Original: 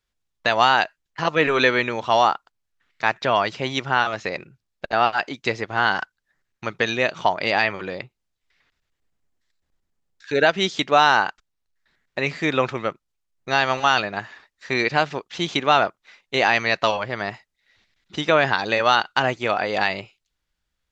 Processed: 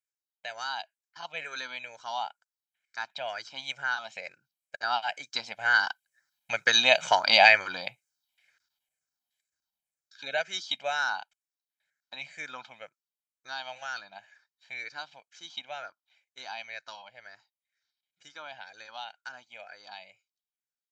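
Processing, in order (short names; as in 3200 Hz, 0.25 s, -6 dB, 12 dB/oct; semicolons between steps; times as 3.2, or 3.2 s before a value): moving spectral ripple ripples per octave 0.5, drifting -2.1 Hz, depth 10 dB; Doppler pass-by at 7.19, 7 m/s, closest 4.1 m; HPF 840 Hz 6 dB/oct; high shelf 4700 Hz +11 dB; comb 1.3 ms, depth 71%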